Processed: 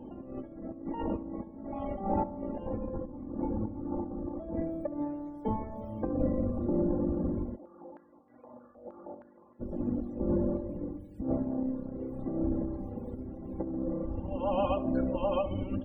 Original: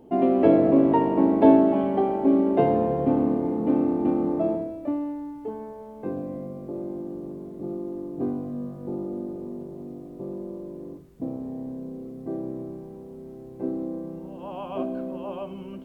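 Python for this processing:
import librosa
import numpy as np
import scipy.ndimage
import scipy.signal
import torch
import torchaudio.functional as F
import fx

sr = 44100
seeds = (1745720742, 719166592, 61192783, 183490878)

y = fx.octave_divider(x, sr, octaves=1, level_db=4.0)
y = fx.dereverb_blind(y, sr, rt60_s=1.4)
y = y + 0.9 * np.pad(y, (int(3.6 * sr / 1000.0), 0))[:len(y)]
y = fx.over_compress(y, sr, threshold_db=-32.0, ratio=-1.0)
y = fx.spec_topn(y, sr, count=64)
y = fx.tremolo_random(y, sr, seeds[0], hz=3.5, depth_pct=55)
y = fx.echo_filtered(y, sr, ms=70, feedback_pct=84, hz=1200.0, wet_db=-14)
y = fx.filter_held_bandpass(y, sr, hz=6.4, low_hz=680.0, high_hz=1900.0, at=(7.55, 9.59), fade=0.02)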